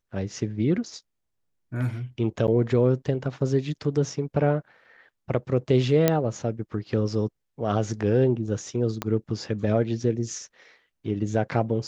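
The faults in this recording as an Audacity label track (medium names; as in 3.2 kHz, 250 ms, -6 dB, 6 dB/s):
2.470000	2.480000	dropout 9.3 ms
6.080000	6.080000	pop -5 dBFS
9.020000	9.020000	pop -13 dBFS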